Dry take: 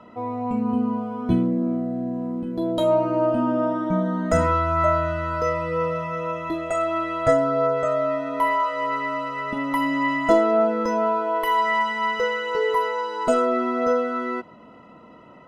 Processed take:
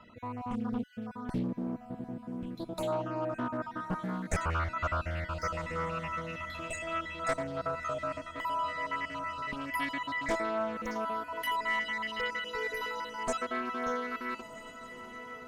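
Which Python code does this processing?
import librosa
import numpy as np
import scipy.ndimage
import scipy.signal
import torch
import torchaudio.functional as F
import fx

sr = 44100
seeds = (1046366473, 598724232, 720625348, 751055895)

p1 = fx.spec_dropout(x, sr, seeds[0], share_pct=34)
p2 = fx.tone_stack(p1, sr, knobs='5-5-5')
p3 = p2 + fx.echo_diffused(p2, sr, ms=1376, feedback_pct=63, wet_db=-15.5, dry=0)
p4 = np.clip(10.0 ** (26.5 / 20.0) * p3, -1.0, 1.0) / 10.0 ** (26.5 / 20.0)
p5 = fx.low_shelf(p4, sr, hz=73.0, db=11.0)
p6 = fx.rider(p5, sr, range_db=4, speed_s=0.5)
p7 = p5 + F.gain(torch.from_numpy(p6), -2.0).numpy()
y = fx.doppler_dist(p7, sr, depth_ms=0.54)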